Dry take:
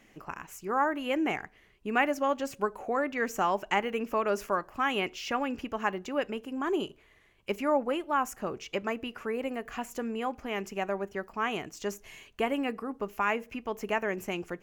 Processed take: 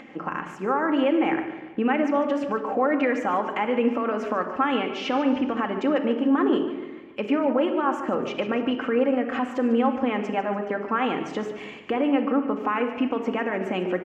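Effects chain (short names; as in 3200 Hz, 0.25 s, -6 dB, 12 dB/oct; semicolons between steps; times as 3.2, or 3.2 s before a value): Bessel low-pass 1700 Hz, order 2; in parallel at -2.5 dB: compressor, threshold -37 dBFS, peak gain reduction 15 dB; on the sum: limiter -25 dBFS, peak gain reduction 11.5 dB; HPF 170 Hz 12 dB/oct; shoebox room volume 3700 m³, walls furnished, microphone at 2 m; speed mistake 24 fps film run at 25 fps; on a send: feedback echo 0.146 s, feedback 47%, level -13 dB; on the sum: upward compressor, threshold -50 dBFS; gain +8.5 dB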